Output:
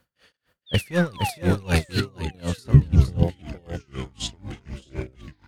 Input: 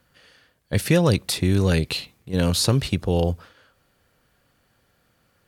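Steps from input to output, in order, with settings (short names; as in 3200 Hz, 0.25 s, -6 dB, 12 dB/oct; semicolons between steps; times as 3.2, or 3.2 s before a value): level quantiser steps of 11 dB; 0.66–1.56 painted sound fall 380–3800 Hz -33 dBFS; echo 0.465 s -5.5 dB; echoes that change speed 0.752 s, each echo -5 st, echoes 3, each echo -6 dB; 0.74–2.01 sample leveller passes 2; 2.74–3.23 tone controls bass +15 dB, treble -3 dB; dB-linear tremolo 4 Hz, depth 27 dB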